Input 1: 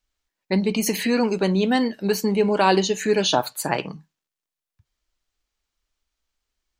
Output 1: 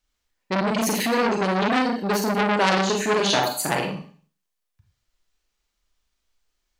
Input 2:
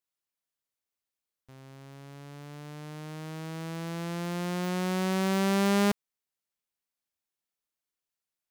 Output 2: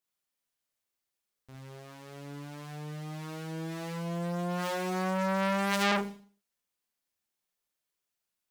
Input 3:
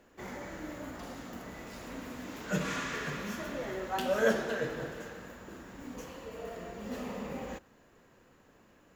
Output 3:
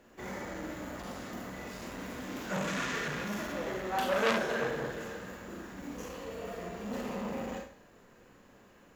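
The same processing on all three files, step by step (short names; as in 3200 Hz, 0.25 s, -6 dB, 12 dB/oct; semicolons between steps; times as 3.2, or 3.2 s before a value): Schroeder reverb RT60 0.43 s, combs from 31 ms, DRR 1 dB; core saturation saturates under 2700 Hz; gain +1 dB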